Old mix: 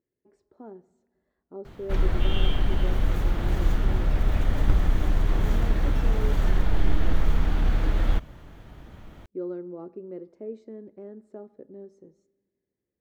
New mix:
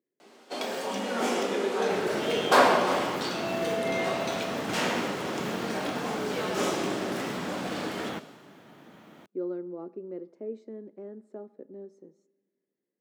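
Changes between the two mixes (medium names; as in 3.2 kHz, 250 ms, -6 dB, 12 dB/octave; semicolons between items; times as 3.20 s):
first sound: unmuted; master: add high-pass 180 Hz 24 dB/octave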